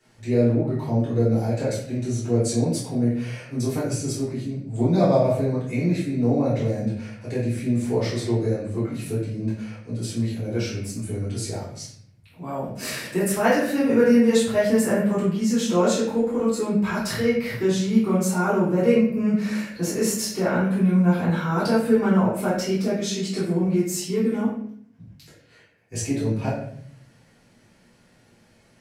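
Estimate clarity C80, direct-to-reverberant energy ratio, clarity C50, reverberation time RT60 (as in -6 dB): 6.5 dB, -10.5 dB, 2.0 dB, 0.60 s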